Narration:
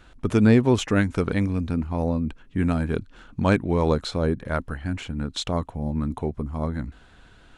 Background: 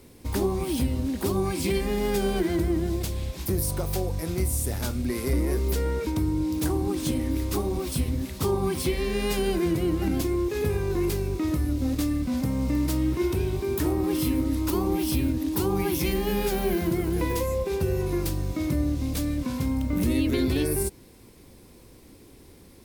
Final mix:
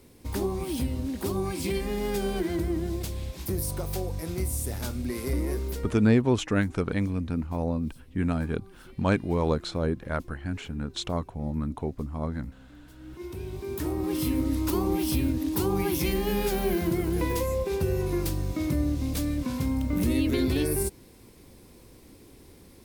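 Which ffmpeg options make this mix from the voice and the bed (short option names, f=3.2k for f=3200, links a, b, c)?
-filter_complex "[0:a]adelay=5600,volume=-4dB[a];[1:a]volume=22dB,afade=t=out:st=5.5:d=0.61:silence=0.0707946,afade=t=in:st=12.96:d=1.5:silence=0.0530884[b];[a][b]amix=inputs=2:normalize=0"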